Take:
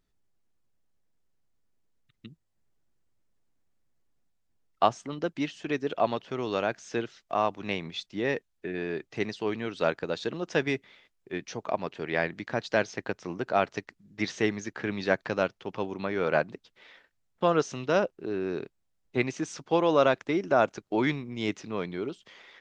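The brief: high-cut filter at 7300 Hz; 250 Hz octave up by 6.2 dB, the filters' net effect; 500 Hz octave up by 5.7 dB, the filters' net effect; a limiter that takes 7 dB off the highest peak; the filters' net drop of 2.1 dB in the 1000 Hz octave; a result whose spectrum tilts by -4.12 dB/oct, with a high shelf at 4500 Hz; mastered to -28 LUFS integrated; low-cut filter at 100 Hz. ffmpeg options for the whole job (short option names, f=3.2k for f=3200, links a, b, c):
-af "highpass=100,lowpass=7.3k,equalizer=f=250:t=o:g=6,equalizer=f=500:t=o:g=7.5,equalizer=f=1k:t=o:g=-7.5,highshelf=f=4.5k:g=-4.5,volume=-0.5dB,alimiter=limit=-14dB:level=0:latency=1"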